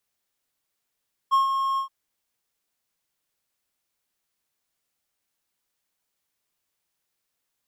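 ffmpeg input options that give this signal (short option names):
-f lavfi -i "aevalsrc='0.224*(1-4*abs(mod(1080*t+0.25,1)-0.5))':d=0.573:s=44100,afade=t=in:d=0.027,afade=t=out:st=0.027:d=0.131:silence=0.447,afade=t=out:st=0.47:d=0.103"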